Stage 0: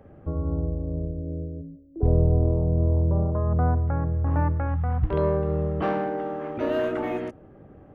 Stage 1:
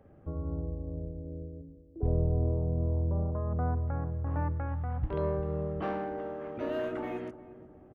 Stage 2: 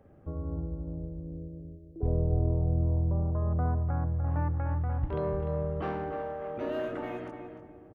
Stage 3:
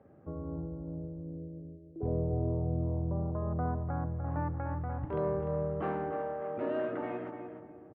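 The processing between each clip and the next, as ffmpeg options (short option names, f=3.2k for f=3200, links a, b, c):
-filter_complex "[0:a]asplit=2[a][b];[b]adelay=356,lowpass=f=870:p=1,volume=-14dB,asplit=2[c][d];[d]adelay=356,lowpass=f=870:p=1,volume=0.47,asplit=2[e][f];[f]adelay=356,lowpass=f=870:p=1,volume=0.47,asplit=2[g][h];[h]adelay=356,lowpass=f=870:p=1,volume=0.47[i];[a][c][e][g][i]amix=inputs=5:normalize=0,volume=-8dB"
-filter_complex "[0:a]asplit=2[a][b];[b]adelay=298,lowpass=f=2.5k:p=1,volume=-7dB,asplit=2[c][d];[d]adelay=298,lowpass=f=2.5k:p=1,volume=0.26,asplit=2[e][f];[f]adelay=298,lowpass=f=2.5k:p=1,volume=0.26[g];[a][c][e][g]amix=inputs=4:normalize=0"
-af "highpass=120,lowpass=2.1k"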